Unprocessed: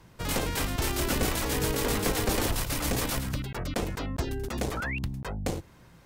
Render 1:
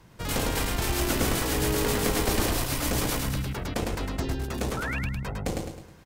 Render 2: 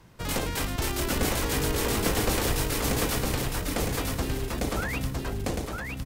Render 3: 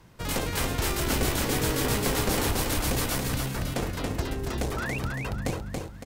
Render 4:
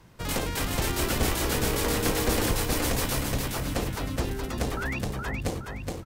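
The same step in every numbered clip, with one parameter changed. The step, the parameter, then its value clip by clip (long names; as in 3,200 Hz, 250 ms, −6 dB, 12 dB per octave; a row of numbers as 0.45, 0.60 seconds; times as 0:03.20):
repeating echo, delay time: 105, 960, 280, 419 milliseconds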